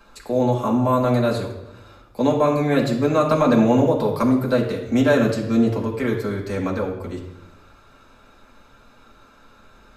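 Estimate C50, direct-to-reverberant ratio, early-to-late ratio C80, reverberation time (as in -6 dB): 6.5 dB, -3.5 dB, 9.0 dB, 0.90 s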